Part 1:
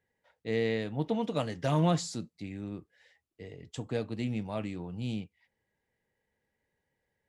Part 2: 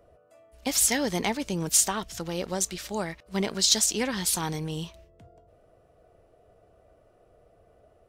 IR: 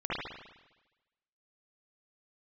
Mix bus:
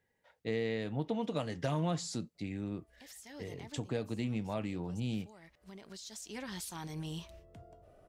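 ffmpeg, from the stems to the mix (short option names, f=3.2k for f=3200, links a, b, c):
-filter_complex "[0:a]volume=1.5dB,asplit=2[a][b];[1:a]bandreject=f=480:w=12,acompressor=threshold=-40dB:ratio=2,alimiter=level_in=8dB:limit=-24dB:level=0:latency=1:release=135,volume=-8dB,adelay=2350,volume=-0.5dB[c];[b]apad=whole_len=460350[d];[c][d]sidechaincompress=threshold=-44dB:ratio=16:attack=16:release=1280[e];[a][e]amix=inputs=2:normalize=0,acompressor=threshold=-33dB:ratio=2.5"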